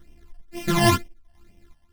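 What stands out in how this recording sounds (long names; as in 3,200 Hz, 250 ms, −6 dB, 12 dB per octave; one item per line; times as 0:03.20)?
a buzz of ramps at a fixed pitch in blocks of 128 samples
phaser sweep stages 12, 2.1 Hz, lowest notch 390–1,400 Hz
chopped level 1.5 Hz, depth 60%, duty 60%
a shimmering, thickened sound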